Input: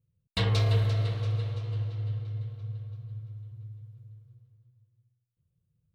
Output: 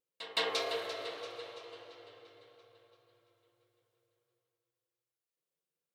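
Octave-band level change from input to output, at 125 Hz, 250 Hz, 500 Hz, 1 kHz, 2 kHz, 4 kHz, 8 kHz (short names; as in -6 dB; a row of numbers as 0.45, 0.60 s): under -40 dB, -13.0 dB, -0.5 dB, +0.5 dB, 0.0 dB, 0.0 dB, n/a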